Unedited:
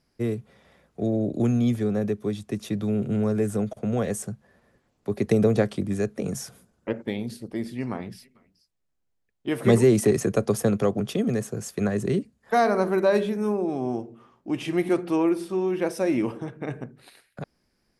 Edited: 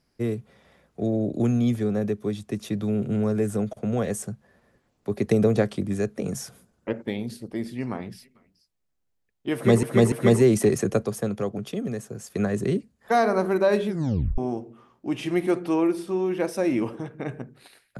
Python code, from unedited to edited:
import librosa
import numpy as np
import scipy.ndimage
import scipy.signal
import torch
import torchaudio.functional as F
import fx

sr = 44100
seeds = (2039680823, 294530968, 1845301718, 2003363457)

y = fx.edit(x, sr, fx.repeat(start_s=9.54, length_s=0.29, count=3),
    fx.clip_gain(start_s=10.47, length_s=1.25, db=-5.0),
    fx.tape_stop(start_s=13.3, length_s=0.5), tone=tone)